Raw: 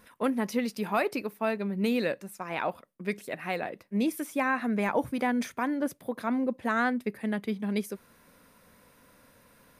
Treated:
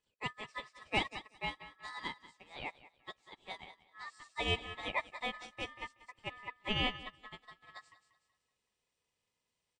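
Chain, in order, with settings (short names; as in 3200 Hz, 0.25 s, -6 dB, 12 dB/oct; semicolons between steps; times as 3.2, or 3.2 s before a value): nonlinear frequency compression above 2100 Hz 1.5:1; HPF 860 Hz 6 dB/oct; ring modulator 1500 Hz; on a send: feedback echo 0.188 s, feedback 42%, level -7 dB; on the sum: upward expander 2.5:1, over -46 dBFS; gain +2.5 dB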